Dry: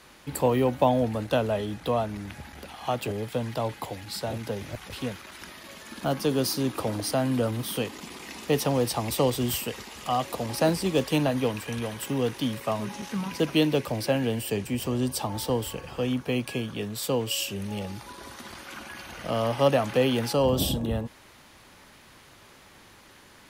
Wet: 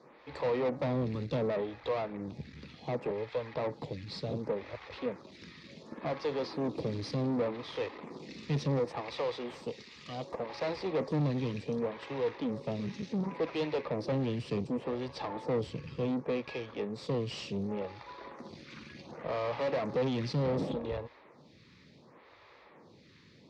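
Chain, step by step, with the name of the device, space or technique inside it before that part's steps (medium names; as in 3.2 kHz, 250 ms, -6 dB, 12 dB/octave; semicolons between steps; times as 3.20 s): 8.79–10.63 s: bass shelf 370 Hz -11 dB; vibe pedal into a guitar amplifier (lamp-driven phase shifter 0.68 Hz; valve stage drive 33 dB, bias 0.7; cabinet simulation 84–4400 Hz, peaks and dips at 150 Hz +6 dB, 480 Hz +5 dB, 750 Hz -3 dB, 1.5 kHz -8 dB, 3 kHz -9 dB); trim +3.5 dB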